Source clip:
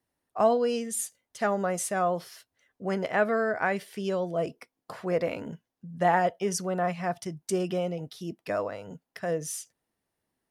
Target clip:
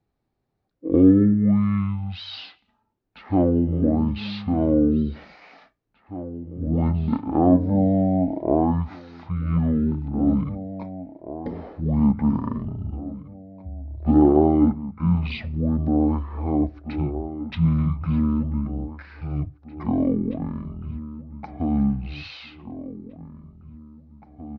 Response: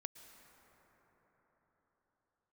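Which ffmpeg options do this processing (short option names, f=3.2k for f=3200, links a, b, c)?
-filter_complex "[0:a]aemphasis=mode=reproduction:type=75fm,asplit=2[a][b];[b]adelay=1191,lowpass=f=3.9k:p=1,volume=-14dB,asplit=2[c][d];[d]adelay=1191,lowpass=f=3.9k:p=1,volume=0.33,asplit=2[e][f];[f]adelay=1191,lowpass=f=3.9k:p=1,volume=0.33[g];[a][c][e][g]amix=inputs=4:normalize=0,asetrate=18846,aresample=44100,volume=6.5dB"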